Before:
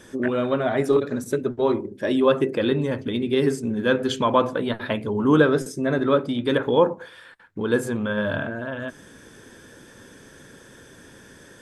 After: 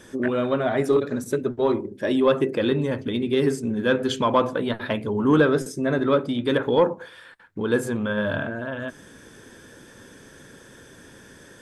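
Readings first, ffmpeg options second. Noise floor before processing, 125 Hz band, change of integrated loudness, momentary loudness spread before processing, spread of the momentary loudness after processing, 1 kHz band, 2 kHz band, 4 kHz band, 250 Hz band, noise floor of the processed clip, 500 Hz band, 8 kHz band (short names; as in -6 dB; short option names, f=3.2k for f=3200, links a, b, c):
-48 dBFS, -0.5 dB, -0.5 dB, 8 LU, 9 LU, -0.5 dB, -0.5 dB, -0.5 dB, -0.5 dB, -48 dBFS, -0.5 dB, 0.0 dB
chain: -af "asoftclip=type=tanh:threshold=-6.5dB"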